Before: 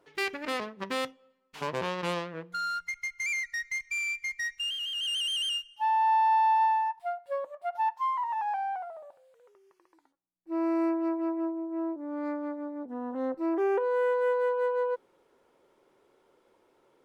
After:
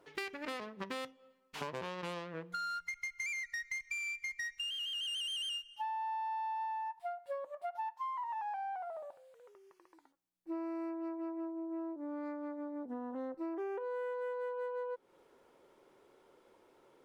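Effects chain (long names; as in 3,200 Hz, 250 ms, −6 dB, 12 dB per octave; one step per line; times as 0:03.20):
downward compressor 6 to 1, threshold −39 dBFS, peak gain reduction 16 dB
level +1 dB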